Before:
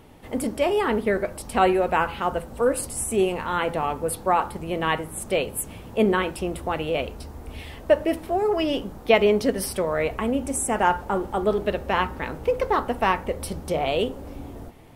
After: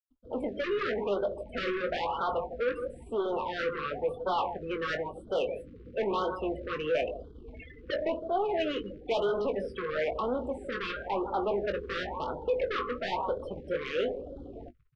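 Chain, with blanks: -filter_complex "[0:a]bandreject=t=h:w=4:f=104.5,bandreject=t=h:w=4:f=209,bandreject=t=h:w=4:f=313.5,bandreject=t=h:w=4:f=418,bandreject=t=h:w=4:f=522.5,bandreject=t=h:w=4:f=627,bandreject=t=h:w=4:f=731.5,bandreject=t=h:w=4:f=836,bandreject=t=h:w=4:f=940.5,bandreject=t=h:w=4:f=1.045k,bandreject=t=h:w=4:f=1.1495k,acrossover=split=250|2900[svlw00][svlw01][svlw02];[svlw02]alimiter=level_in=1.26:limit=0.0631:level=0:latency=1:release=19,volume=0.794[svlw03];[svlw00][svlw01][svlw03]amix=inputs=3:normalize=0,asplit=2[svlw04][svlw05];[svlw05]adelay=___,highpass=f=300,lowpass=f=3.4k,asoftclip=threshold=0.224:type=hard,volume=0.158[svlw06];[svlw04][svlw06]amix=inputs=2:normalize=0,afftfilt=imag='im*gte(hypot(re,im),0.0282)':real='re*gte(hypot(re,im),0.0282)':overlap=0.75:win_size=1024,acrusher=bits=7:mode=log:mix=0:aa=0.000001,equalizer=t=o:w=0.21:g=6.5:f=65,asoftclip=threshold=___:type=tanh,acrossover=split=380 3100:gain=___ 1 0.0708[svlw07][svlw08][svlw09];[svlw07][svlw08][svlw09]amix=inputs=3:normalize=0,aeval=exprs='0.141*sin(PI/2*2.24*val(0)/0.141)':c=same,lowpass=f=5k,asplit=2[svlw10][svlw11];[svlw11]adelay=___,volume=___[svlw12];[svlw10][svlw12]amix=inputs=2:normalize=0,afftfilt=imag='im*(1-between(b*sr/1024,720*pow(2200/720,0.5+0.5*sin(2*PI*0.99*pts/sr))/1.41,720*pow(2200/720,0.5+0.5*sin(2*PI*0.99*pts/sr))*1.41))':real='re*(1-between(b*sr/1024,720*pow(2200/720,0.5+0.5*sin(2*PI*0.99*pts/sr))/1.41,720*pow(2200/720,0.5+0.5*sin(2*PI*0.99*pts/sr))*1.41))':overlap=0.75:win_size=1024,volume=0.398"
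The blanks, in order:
160, 0.0841, 0.2, 20, 0.355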